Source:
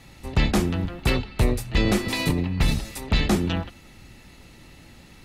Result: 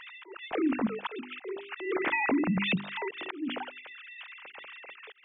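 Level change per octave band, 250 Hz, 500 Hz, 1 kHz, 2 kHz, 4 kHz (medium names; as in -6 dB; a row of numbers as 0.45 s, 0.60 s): -5.5 dB, -5.5 dB, -3.0 dB, -2.0 dB, -9.5 dB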